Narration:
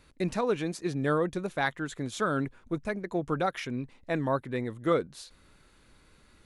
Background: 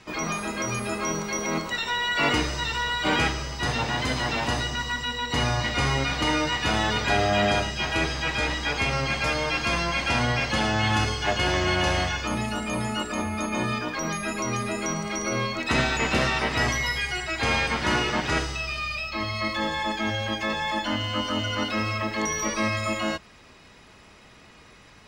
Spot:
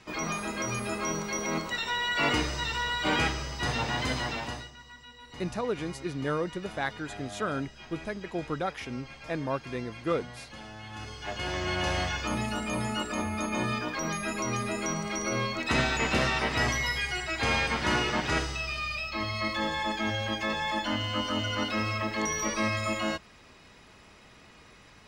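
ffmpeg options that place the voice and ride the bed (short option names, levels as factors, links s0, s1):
-filter_complex "[0:a]adelay=5200,volume=0.708[s0];[1:a]volume=5.01,afade=t=out:st=4.12:d=0.6:silence=0.141254,afade=t=in:st=10.91:d=1.37:silence=0.133352[s1];[s0][s1]amix=inputs=2:normalize=0"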